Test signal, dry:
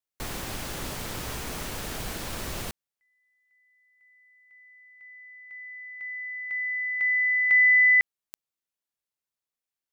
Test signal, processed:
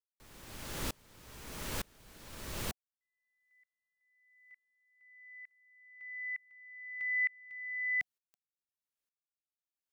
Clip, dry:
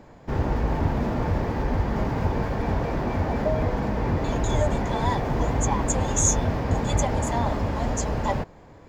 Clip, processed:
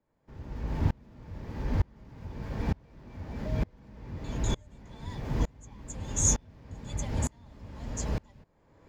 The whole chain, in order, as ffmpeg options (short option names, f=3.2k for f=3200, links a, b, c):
-filter_complex "[0:a]bandreject=f=730:w=12,acrossover=split=270|2200[a][b][c];[b]acompressor=threshold=-37dB:ratio=6:release=224:knee=2.83:detection=peak[d];[a][d][c]amix=inputs=3:normalize=0,aeval=exprs='val(0)*pow(10,-32*if(lt(mod(-1.1*n/s,1),2*abs(-1.1)/1000),1-mod(-1.1*n/s,1)/(2*abs(-1.1)/1000),(mod(-1.1*n/s,1)-2*abs(-1.1)/1000)/(1-2*abs(-1.1)/1000))/20)':c=same"